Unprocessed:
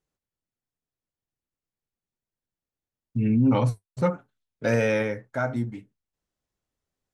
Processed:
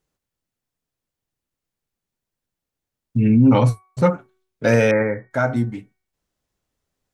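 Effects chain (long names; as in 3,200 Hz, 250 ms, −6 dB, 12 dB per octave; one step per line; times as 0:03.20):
0:04.91–0:05.31: elliptic low-pass filter 2,100 Hz, stop band 40 dB
hum removal 374.4 Hz, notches 6
level +7 dB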